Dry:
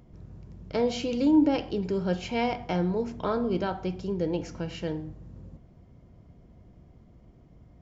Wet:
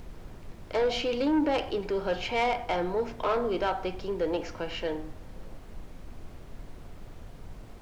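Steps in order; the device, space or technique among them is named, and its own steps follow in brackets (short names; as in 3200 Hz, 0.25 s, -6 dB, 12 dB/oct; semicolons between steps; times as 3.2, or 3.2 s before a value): aircraft cabin announcement (BPF 480–4000 Hz; soft clip -26.5 dBFS, distortion -14 dB; brown noise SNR 10 dB); gain +6.5 dB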